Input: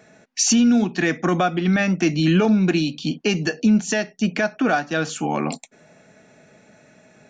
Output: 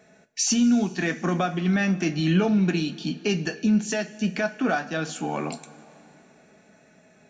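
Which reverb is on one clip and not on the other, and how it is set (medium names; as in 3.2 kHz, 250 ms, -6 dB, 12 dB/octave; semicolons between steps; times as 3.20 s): two-slope reverb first 0.21 s, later 3.1 s, from -20 dB, DRR 7 dB; trim -5.5 dB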